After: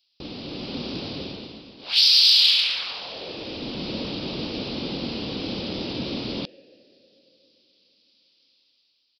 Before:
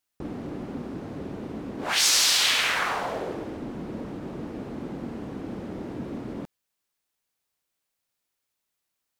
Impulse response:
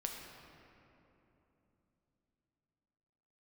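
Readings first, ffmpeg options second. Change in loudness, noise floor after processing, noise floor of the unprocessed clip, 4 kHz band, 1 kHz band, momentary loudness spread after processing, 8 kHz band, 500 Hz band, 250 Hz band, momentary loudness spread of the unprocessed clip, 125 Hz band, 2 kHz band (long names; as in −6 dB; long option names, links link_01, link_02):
+5.0 dB, −69 dBFS, −82 dBFS, +7.5 dB, −7.5 dB, 22 LU, −12.0 dB, +0.5 dB, +2.0 dB, 18 LU, +2.0 dB, −4.0 dB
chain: -filter_complex "[0:a]asplit=2[link_01][link_02];[link_02]asplit=3[link_03][link_04][link_05];[link_03]bandpass=frequency=530:width_type=q:width=8,volume=0dB[link_06];[link_04]bandpass=frequency=1840:width_type=q:width=8,volume=-6dB[link_07];[link_05]bandpass=frequency=2480:width_type=q:width=8,volume=-9dB[link_08];[link_06][link_07][link_08]amix=inputs=3:normalize=0[link_09];[1:a]atrim=start_sample=2205[link_10];[link_09][link_10]afir=irnorm=-1:irlink=0,volume=-2.5dB[link_11];[link_01][link_11]amix=inputs=2:normalize=0,aresample=11025,aresample=44100,aexciter=amount=14.5:drive=6.3:freq=2800,dynaudnorm=framelen=150:gausssize=9:maxgain=7dB,volume=-3.5dB"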